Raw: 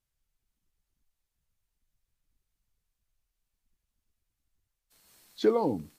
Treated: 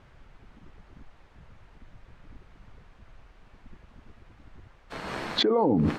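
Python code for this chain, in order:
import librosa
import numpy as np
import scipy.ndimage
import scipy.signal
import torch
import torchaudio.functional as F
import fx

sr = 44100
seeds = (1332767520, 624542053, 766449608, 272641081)

y = scipy.signal.sosfilt(scipy.signal.butter(2, 1600.0, 'lowpass', fs=sr, output='sos'), x)
y = fx.low_shelf(y, sr, hz=82.0, db=-10.0)
y = fx.env_flatten(y, sr, amount_pct=100)
y = y * 10.0 ** (-3.0 / 20.0)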